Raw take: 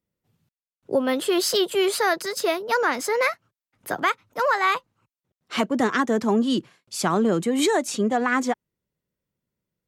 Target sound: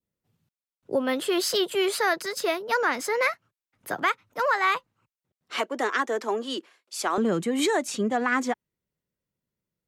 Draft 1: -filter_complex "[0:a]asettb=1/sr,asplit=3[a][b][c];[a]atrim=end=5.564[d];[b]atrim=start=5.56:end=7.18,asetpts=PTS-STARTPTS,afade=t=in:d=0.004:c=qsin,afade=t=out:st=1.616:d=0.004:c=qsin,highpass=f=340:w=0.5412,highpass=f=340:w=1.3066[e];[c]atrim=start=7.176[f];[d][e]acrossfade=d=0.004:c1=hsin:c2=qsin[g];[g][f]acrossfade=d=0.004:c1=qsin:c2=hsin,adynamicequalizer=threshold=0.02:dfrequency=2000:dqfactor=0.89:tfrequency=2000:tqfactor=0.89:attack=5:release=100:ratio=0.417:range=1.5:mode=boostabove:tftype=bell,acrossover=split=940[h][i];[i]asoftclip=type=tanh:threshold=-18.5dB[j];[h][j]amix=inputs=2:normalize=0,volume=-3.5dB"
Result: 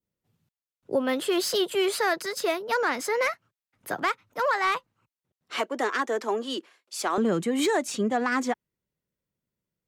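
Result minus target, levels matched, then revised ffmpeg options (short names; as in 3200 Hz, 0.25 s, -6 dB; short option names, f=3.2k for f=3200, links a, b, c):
soft clip: distortion +19 dB
-filter_complex "[0:a]asettb=1/sr,asplit=3[a][b][c];[a]atrim=end=5.564[d];[b]atrim=start=5.56:end=7.18,asetpts=PTS-STARTPTS,afade=t=in:d=0.004:c=qsin,afade=t=out:st=1.616:d=0.004:c=qsin,highpass=f=340:w=0.5412,highpass=f=340:w=1.3066[e];[c]atrim=start=7.176[f];[d][e]acrossfade=d=0.004:c1=hsin:c2=qsin[g];[g][f]acrossfade=d=0.004:c1=qsin:c2=hsin,adynamicequalizer=threshold=0.02:dfrequency=2000:dqfactor=0.89:tfrequency=2000:tqfactor=0.89:attack=5:release=100:ratio=0.417:range=1.5:mode=boostabove:tftype=bell,acrossover=split=940[h][i];[i]asoftclip=type=tanh:threshold=-6.5dB[j];[h][j]amix=inputs=2:normalize=0,volume=-3.5dB"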